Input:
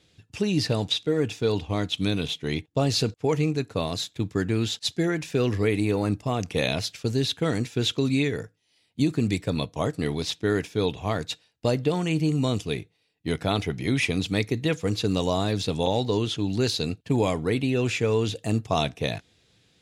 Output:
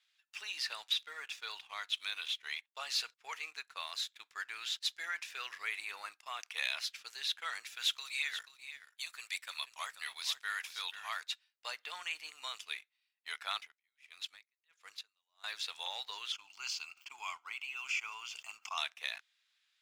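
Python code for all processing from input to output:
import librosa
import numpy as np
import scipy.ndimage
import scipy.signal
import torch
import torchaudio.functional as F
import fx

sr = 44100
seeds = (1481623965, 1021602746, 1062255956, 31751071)

y = fx.chain(x, sr, fx.highpass(hz=590.0, slope=12),
    fx.high_shelf(hz=7900.0, db=10.0),
    fx.echo_single(ms=484, db=-12.0), at=(7.66, 11.21))
y = fx.chain(y, sr, fx.level_steps(step_db=10),
    fx.tremolo_db(hz=1.5, depth_db=34), at=(13.57, 15.44))
y = fx.chain(y, sr, fx.fixed_phaser(hz=2600.0, stages=8),
    fx.sustainer(db_per_s=62.0), at=(16.32, 18.78))
y = scipy.signal.sosfilt(scipy.signal.butter(4, 1200.0, 'highpass', fs=sr, output='sos'), y)
y = fx.peak_eq(y, sr, hz=7900.0, db=-7.0, octaves=1.8)
y = fx.leveller(y, sr, passes=1)
y = F.gain(torch.from_numpy(y), -6.5).numpy()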